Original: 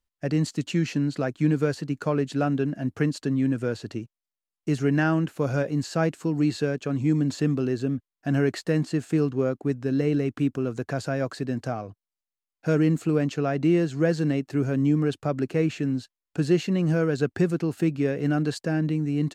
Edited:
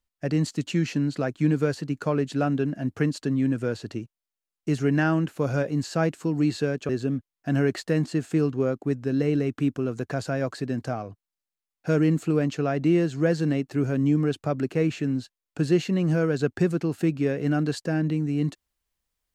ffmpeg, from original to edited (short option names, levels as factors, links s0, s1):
-filter_complex "[0:a]asplit=2[s0][s1];[s0]atrim=end=6.892[s2];[s1]atrim=start=7.678[s3];[s2][s3]acrossfade=d=0.004:c1=hsin:c2=hsin"